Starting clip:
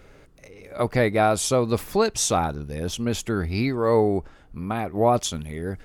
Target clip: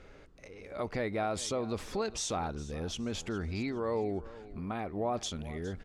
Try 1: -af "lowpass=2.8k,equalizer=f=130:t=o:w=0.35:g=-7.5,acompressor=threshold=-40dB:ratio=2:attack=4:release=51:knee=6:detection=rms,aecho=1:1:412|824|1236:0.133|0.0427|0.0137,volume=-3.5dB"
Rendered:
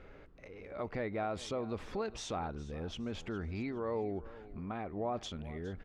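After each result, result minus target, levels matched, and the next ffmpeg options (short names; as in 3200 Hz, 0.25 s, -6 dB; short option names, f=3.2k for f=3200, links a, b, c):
8000 Hz band -8.0 dB; compressor: peak gain reduction +3.5 dB
-af "lowpass=6.4k,equalizer=f=130:t=o:w=0.35:g=-7.5,acompressor=threshold=-40dB:ratio=2:attack=4:release=51:knee=6:detection=rms,aecho=1:1:412|824|1236:0.133|0.0427|0.0137,volume=-3.5dB"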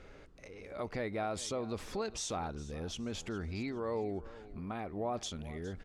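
compressor: peak gain reduction +3.5 dB
-af "lowpass=6.4k,equalizer=f=130:t=o:w=0.35:g=-7.5,acompressor=threshold=-33dB:ratio=2:attack=4:release=51:knee=6:detection=rms,aecho=1:1:412|824|1236:0.133|0.0427|0.0137,volume=-3.5dB"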